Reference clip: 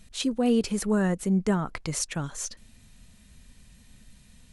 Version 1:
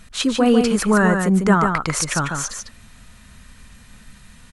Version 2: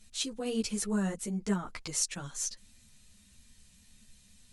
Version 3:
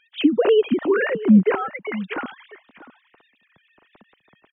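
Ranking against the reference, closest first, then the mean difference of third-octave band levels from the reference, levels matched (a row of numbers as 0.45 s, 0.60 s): 2, 1, 3; 3.0 dB, 4.5 dB, 9.5 dB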